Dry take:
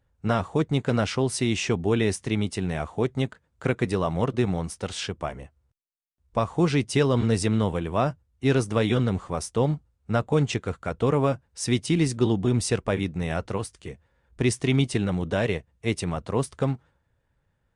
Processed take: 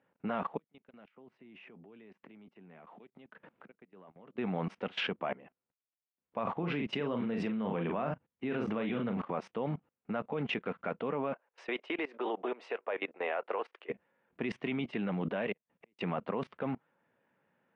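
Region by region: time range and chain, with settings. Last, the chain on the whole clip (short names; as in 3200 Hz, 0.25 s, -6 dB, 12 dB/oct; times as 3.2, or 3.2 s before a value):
0.57–4.38 flipped gate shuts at -27 dBFS, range -38 dB + transient shaper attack +1 dB, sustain +7 dB + three-band squash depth 100%
6.43–9.28 low shelf 200 Hz +5.5 dB + compressor 1.5:1, threshold -23 dBFS + doubler 41 ms -7 dB
11.33–13.9 high shelf 3400 Hz -10.5 dB + compressor 2:1, threshold -24 dBFS + HPF 450 Hz 24 dB/oct
15.52–15.99 HPF 59 Hz 24 dB/oct + compressor 4:1, threshold -42 dBFS + flipped gate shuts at -37 dBFS, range -35 dB
whole clip: Chebyshev band-pass 200–2700 Hz, order 3; dynamic EQ 330 Hz, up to -4 dB, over -39 dBFS, Q 1.7; level quantiser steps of 21 dB; gain +8.5 dB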